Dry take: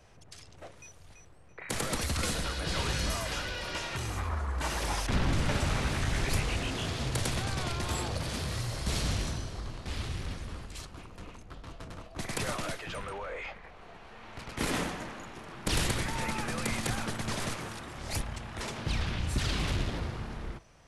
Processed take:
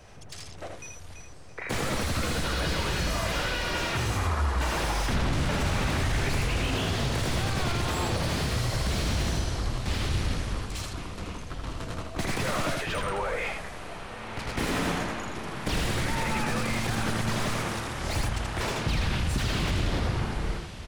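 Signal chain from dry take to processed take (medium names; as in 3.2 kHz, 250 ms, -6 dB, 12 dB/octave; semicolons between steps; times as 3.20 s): on a send: delay 81 ms -5 dB; on the sum: peak limiter -26 dBFS, peak gain reduction 9.5 dB; echo that smears into a reverb 1093 ms, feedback 42%, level -15 dB; slew-rate limiter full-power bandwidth 41 Hz; trim +7.5 dB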